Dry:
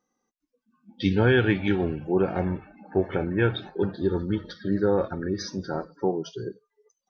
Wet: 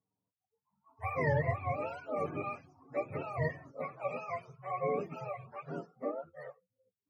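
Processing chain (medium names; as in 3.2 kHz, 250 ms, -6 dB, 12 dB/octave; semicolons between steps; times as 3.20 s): spectrum inverted on a logarithmic axis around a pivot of 470 Hz; trim -9 dB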